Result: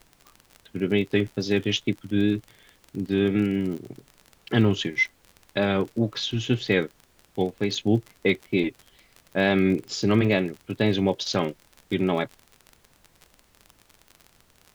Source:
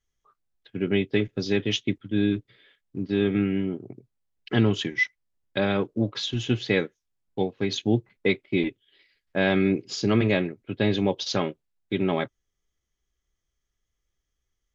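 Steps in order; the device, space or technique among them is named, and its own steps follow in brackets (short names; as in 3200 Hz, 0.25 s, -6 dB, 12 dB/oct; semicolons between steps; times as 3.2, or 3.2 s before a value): vinyl LP (wow and flutter; crackle 39/s -33 dBFS; pink noise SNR 35 dB); gain +1 dB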